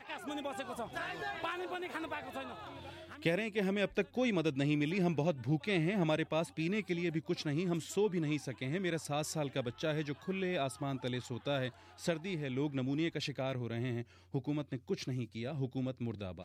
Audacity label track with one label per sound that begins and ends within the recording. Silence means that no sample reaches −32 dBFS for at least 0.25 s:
3.250000	11.680000	sound
12.060000	14.010000	sound